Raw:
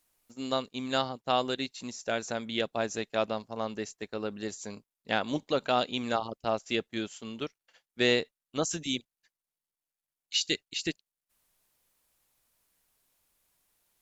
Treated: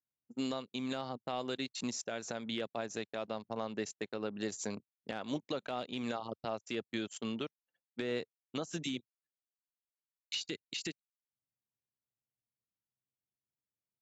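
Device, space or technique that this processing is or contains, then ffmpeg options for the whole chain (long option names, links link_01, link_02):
podcast mastering chain: -af "anlmdn=0.0251,highpass=frequency=98:width=0.5412,highpass=frequency=98:width=1.3066,deesser=0.95,acompressor=threshold=-39dB:ratio=2.5,alimiter=level_in=5.5dB:limit=-24dB:level=0:latency=1:release=217,volume=-5.5dB,volume=5.5dB" -ar 22050 -c:a libmp3lame -b:a 96k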